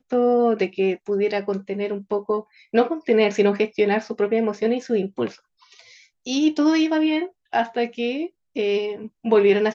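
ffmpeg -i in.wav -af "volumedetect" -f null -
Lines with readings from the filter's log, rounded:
mean_volume: -21.8 dB
max_volume: -5.2 dB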